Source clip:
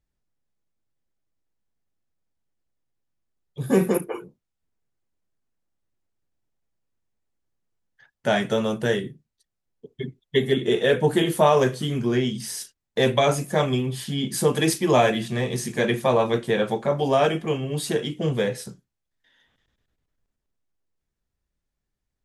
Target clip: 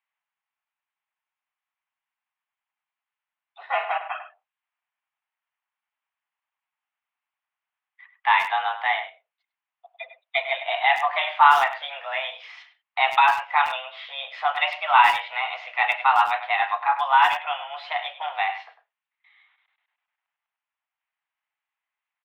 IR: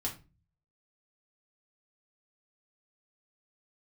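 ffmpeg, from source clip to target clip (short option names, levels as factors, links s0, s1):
-filter_complex "[0:a]highpass=f=570:t=q:w=0.5412,highpass=f=570:t=q:w=1.307,lowpass=f=2700:t=q:w=0.5176,lowpass=f=2700:t=q:w=0.7071,lowpass=f=2700:t=q:w=1.932,afreqshift=270,asplit=2[s0][s1];[s1]adelay=100,highpass=300,lowpass=3400,asoftclip=type=hard:threshold=0.158,volume=0.282[s2];[s0][s2]amix=inputs=2:normalize=0,crystalizer=i=2.5:c=0,volume=1.58"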